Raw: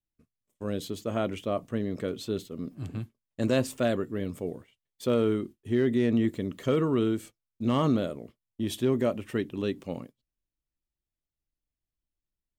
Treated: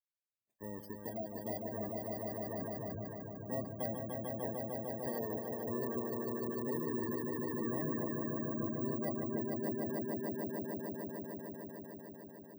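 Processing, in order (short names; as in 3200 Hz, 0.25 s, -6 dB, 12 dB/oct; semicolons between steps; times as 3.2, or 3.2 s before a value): FFT order left unsorted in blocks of 32 samples; HPF 120 Hz 6 dB/oct; bell 660 Hz +10 dB 0.22 oct; 0.74–1.56 notch 530 Hz, Q 12; compressor 2.5:1, threshold -31 dBFS, peak gain reduction 8 dB; step gate "..xxxxxx.xxx." 95 bpm -60 dB; swelling echo 0.15 s, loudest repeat 5, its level -3.5 dB; spectral gate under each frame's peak -15 dB strong; 2.95–3.86 three-band expander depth 100%; gain -8.5 dB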